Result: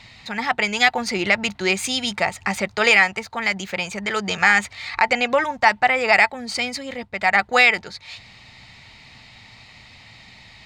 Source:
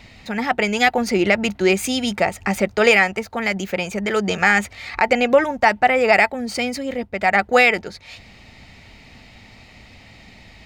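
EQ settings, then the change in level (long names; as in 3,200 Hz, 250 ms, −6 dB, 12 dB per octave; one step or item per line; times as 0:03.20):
octave-band graphic EQ 125/1,000/2,000/4,000/8,000 Hz +9/+10/+6/+11/+8 dB
−9.5 dB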